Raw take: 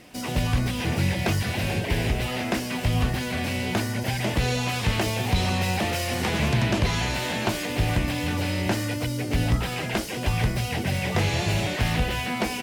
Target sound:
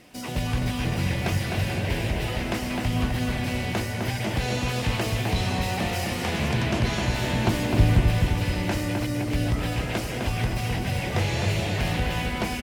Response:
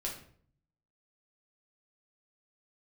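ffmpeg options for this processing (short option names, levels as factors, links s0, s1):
-filter_complex "[0:a]asettb=1/sr,asplit=3[s0][s1][s2];[s0]atrim=end=7.214[s3];[s1]atrim=start=7.21:end=8.01,asetpts=PTS-STARTPTS,afade=t=in:d=0.004:c=qsin,afade=t=out:st=0.796:d=0.004:c=qsin,lowshelf=f=290:g=10[s4];[s2]atrim=start=8.006[s5];[s3][s4]acrossfade=d=0.004:c1=hsin:c2=qsin[s6];[s6][s5]acrossfade=d=0.004:c1=qsin:c2=hsin,asplit=2[s7][s8];[s8]adelay=257,lowpass=f=3200:p=1,volume=0.668,asplit=2[s9][s10];[s10]adelay=257,lowpass=f=3200:p=1,volume=0.54,asplit=2[s11][s12];[s12]adelay=257,lowpass=f=3200:p=1,volume=0.54,asplit=2[s13][s14];[s14]adelay=257,lowpass=f=3200:p=1,volume=0.54,asplit=2[s15][s16];[s16]adelay=257,lowpass=f=3200:p=1,volume=0.54,asplit=2[s17][s18];[s18]adelay=257,lowpass=f=3200:p=1,volume=0.54,asplit=2[s19][s20];[s20]adelay=257,lowpass=f=3200:p=1,volume=0.54[s21];[s7][s9][s11][s13][s15][s17][s19][s21]amix=inputs=8:normalize=0,volume=0.708"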